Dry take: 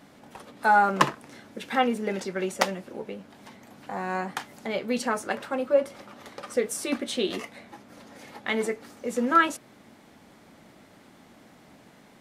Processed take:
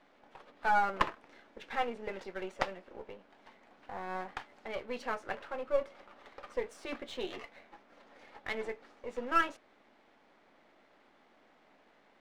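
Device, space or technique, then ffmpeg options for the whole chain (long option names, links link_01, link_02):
crystal radio: -af "highpass=390,lowpass=3200,aeval=exprs='if(lt(val(0),0),0.447*val(0),val(0))':channel_layout=same,volume=-5.5dB"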